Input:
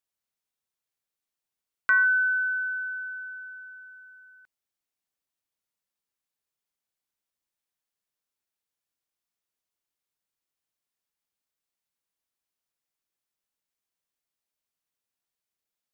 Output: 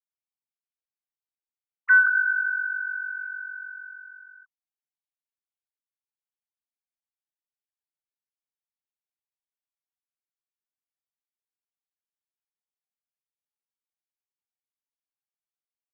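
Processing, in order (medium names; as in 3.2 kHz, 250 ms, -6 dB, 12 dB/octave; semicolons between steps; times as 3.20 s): formants replaced by sine waves; trim +2.5 dB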